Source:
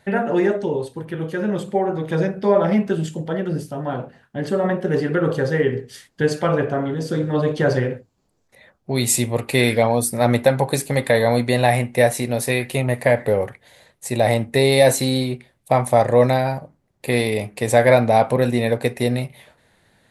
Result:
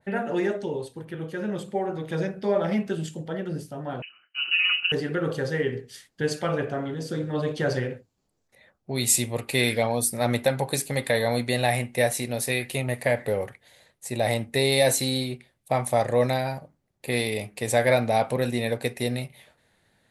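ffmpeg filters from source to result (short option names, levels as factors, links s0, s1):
-filter_complex "[0:a]asettb=1/sr,asplit=3[s0][s1][s2];[s0]atrim=end=4.024[s3];[s1]atrim=start=4.02:end=4.92,asetpts=PTS-STARTPTS,afade=t=in:d=0.004:c=qsin,afade=t=out:st=0.896:d=0.004:c=qsin,lowpass=f=2600:t=q:w=0.5098,lowpass=f=2600:t=q:w=0.6013,lowpass=f=2600:t=q:w=0.9,lowpass=f=2600:t=q:w=2.563,afreqshift=-3100[s4];[s2]atrim=start=4.916[s5];[s3][s4]acrossfade=d=0.004:c1=hsin:c2=qsin[s6];[s6][s5]acrossfade=d=0.004:c1=qsin:c2=hsin,bandreject=f=1000:w=26,adynamicequalizer=threshold=0.0251:dfrequency=2000:dqfactor=0.7:tfrequency=2000:tqfactor=0.7:attack=5:release=100:ratio=0.375:range=3:mode=boostabove:tftype=highshelf,volume=0.422"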